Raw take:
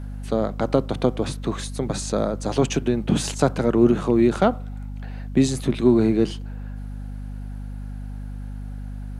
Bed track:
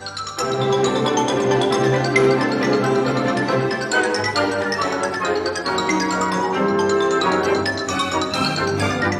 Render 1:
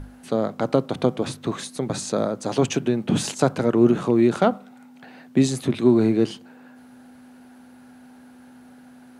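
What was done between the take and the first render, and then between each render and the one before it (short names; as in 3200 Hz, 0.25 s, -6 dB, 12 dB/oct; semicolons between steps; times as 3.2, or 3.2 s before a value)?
notches 50/100/150/200 Hz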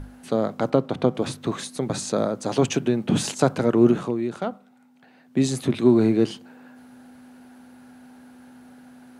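0.7–1.15 high shelf 5400 Hz -10.5 dB; 3.9–5.53 dip -9.5 dB, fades 0.29 s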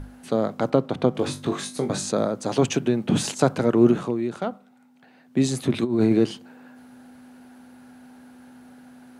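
1.12–2.11 flutter echo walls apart 3.5 m, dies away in 0.2 s; 5.73–6.19 negative-ratio compressor -19 dBFS, ratio -0.5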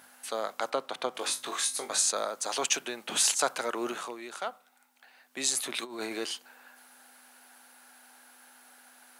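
HPF 950 Hz 12 dB/oct; high shelf 7100 Hz +11.5 dB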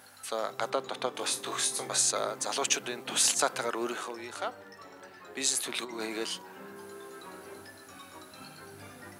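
add bed track -28.5 dB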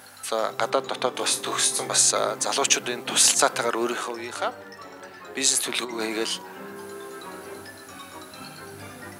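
gain +7.5 dB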